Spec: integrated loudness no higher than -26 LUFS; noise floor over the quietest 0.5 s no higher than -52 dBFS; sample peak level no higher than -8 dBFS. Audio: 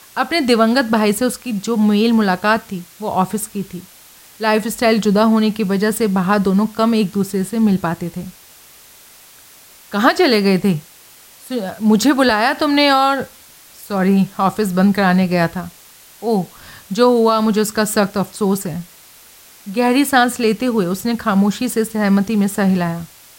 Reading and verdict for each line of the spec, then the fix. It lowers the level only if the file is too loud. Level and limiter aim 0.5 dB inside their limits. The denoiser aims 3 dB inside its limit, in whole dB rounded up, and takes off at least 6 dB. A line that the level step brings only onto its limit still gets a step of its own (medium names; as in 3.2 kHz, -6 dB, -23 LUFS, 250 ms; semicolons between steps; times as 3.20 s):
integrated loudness -16.5 LUFS: fail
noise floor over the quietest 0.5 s -44 dBFS: fail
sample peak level -2.0 dBFS: fail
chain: trim -10 dB